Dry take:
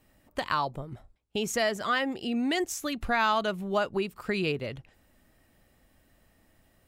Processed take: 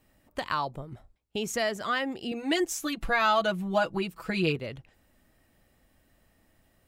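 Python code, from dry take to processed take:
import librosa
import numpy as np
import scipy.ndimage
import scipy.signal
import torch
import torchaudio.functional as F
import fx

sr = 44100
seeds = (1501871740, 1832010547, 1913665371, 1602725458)

y = fx.comb(x, sr, ms=6.1, depth=0.99, at=(2.31, 4.56))
y = F.gain(torch.from_numpy(y), -1.5).numpy()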